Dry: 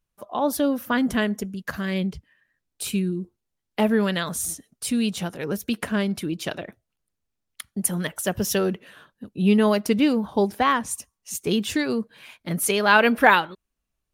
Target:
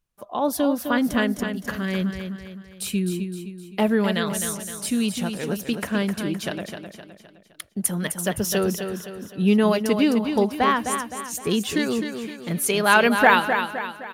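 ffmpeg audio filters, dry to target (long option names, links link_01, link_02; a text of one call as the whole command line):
ffmpeg -i in.wav -af "aecho=1:1:258|516|774|1032|1290:0.422|0.19|0.0854|0.0384|0.0173" out.wav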